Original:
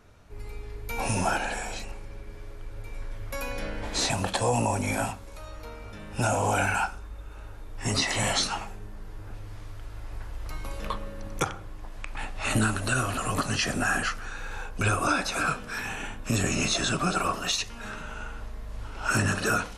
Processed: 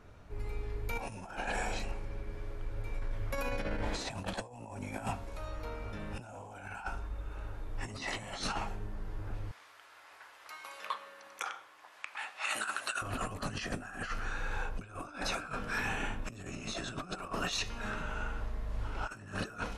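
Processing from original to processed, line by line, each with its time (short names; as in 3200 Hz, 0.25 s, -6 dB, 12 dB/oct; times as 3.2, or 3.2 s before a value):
9.51–13.02 HPF 1100 Hz
whole clip: high shelf 4100 Hz -9 dB; de-hum 229.5 Hz, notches 28; negative-ratio compressor -33 dBFS, ratio -0.5; gain -3 dB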